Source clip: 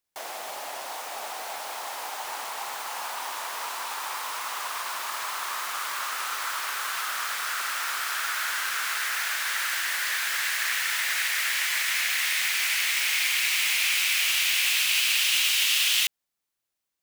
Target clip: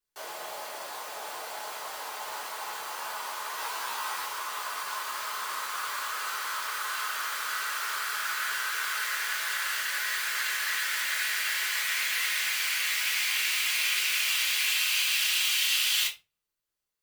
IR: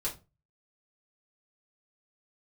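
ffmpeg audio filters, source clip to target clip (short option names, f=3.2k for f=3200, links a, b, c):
-filter_complex "[0:a]asettb=1/sr,asplit=3[a][b][c];[a]atrim=end=3.564[d];[b]atrim=start=3.56:end=4.26,asetpts=PTS-STARTPTS,afade=t=in:d=0.004:c=qsin,afade=t=out:st=0.696:d=0.004:c=qsin,asplit=2[e][f];[f]adelay=15,volume=-2.5dB[g];[e][g]amix=inputs=2:normalize=0,atrim=end_sample=30870[h];[c]atrim=start=4.256[i];[d][h]acrossfade=d=0.004:c1=hsin:c2=qsin[j];[j][i]acrossfade=d=0.004:c1=qsin:c2=hsin[k];[1:a]atrim=start_sample=2205[l];[k][l]afir=irnorm=-1:irlink=0,volume=-5.5dB"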